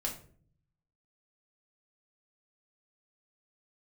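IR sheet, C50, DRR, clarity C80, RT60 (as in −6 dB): 9.0 dB, −1.0 dB, 14.0 dB, 0.50 s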